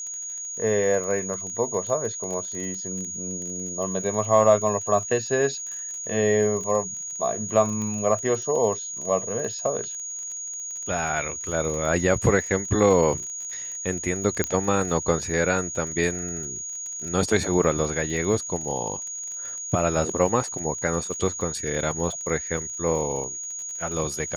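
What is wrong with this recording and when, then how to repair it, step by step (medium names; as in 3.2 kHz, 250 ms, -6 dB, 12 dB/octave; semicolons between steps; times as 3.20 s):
crackle 31 per s -32 dBFS
whine 6.7 kHz -31 dBFS
7.82 s: pop -21 dBFS
14.44 s: pop -8 dBFS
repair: de-click; band-stop 6.7 kHz, Q 30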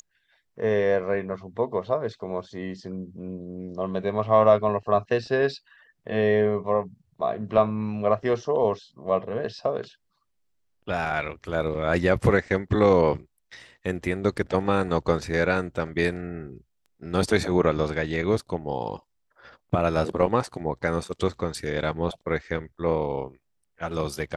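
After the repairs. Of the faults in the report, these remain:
nothing left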